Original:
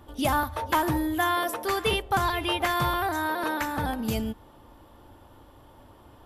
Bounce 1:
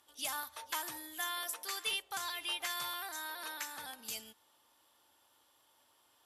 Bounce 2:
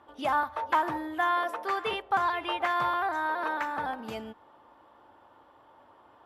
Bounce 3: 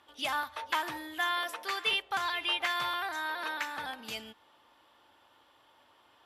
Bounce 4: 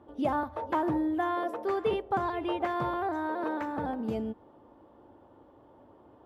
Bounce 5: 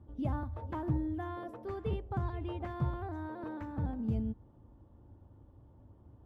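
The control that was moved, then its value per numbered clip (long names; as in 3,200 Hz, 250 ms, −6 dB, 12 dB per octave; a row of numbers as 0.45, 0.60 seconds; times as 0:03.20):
resonant band-pass, frequency: 7,500, 1,100, 2,900, 420, 100 Hertz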